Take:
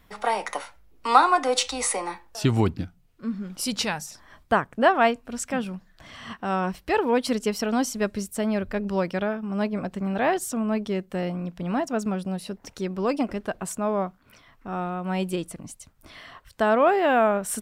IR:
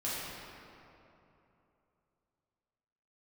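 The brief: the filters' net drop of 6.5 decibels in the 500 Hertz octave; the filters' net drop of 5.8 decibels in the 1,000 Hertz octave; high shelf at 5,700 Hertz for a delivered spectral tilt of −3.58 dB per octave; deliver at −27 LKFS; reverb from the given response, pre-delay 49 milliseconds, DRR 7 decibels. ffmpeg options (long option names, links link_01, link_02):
-filter_complex "[0:a]equalizer=frequency=500:width_type=o:gain=-7,equalizer=frequency=1000:width_type=o:gain=-5.5,highshelf=frequency=5700:gain=8,asplit=2[link_01][link_02];[1:a]atrim=start_sample=2205,adelay=49[link_03];[link_02][link_03]afir=irnorm=-1:irlink=0,volume=-12.5dB[link_04];[link_01][link_04]amix=inputs=2:normalize=0"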